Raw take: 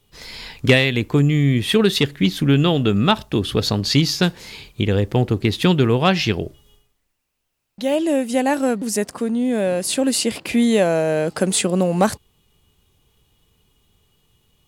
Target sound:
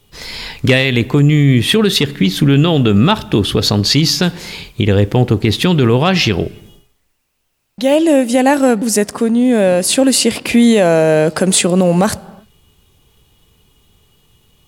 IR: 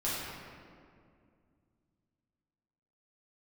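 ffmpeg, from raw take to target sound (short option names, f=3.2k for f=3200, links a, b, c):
-filter_complex "[0:a]asplit=2[a][b];[1:a]atrim=start_sample=2205,afade=t=out:st=0.42:d=0.01,atrim=end_sample=18963[c];[b][c]afir=irnorm=-1:irlink=0,volume=-29.5dB[d];[a][d]amix=inputs=2:normalize=0,alimiter=level_in=9.5dB:limit=-1dB:release=50:level=0:latency=1,volume=-1.5dB"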